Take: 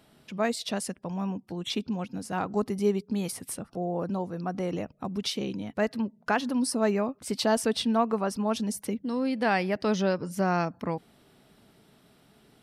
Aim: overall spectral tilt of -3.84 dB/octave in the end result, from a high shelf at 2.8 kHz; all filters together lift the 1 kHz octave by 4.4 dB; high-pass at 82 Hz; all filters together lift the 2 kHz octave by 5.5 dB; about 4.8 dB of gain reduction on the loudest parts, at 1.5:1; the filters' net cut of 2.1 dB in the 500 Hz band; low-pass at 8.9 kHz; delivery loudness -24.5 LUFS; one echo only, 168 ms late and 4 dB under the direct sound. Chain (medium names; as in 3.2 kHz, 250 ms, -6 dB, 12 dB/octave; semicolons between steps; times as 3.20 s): high-pass 82 Hz; low-pass 8.9 kHz; peaking EQ 500 Hz -5.5 dB; peaking EQ 1 kHz +6.5 dB; peaking EQ 2 kHz +3 dB; treble shelf 2.8 kHz +5.5 dB; compression 1.5:1, threshold -30 dBFS; delay 168 ms -4 dB; trim +5.5 dB